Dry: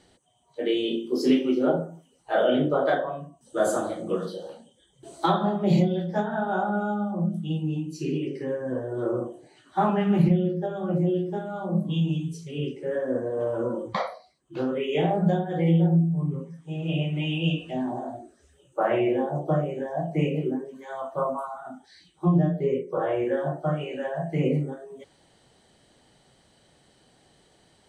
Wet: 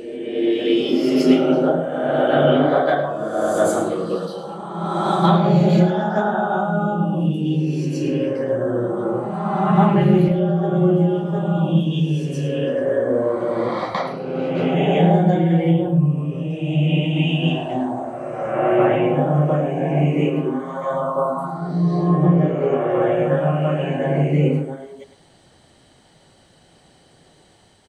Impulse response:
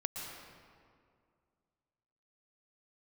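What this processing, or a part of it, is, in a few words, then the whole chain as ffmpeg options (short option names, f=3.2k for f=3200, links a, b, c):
reverse reverb: -filter_complex "[0:a]aecho=1:1:106:0.266,areverse[a];[1:a]atrim=start_sample=2205[b];[a][b]afir=irnorm=-1:irlink=0,areverse,volume=5.5dB"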